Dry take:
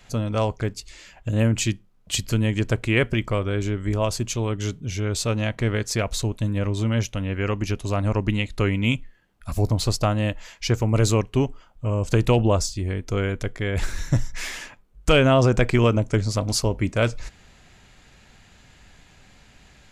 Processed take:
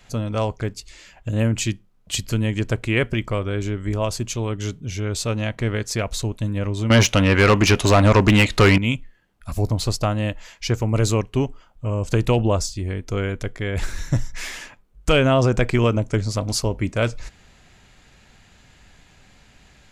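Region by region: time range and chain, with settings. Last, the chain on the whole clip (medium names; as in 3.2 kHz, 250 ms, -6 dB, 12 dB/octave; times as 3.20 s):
6.90–8.78 s: bass shelf 160 Hz +8 dB + overdrive pedal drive 26 dB, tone 5.1 kHz, clips at -4 dBFS
whole clip: none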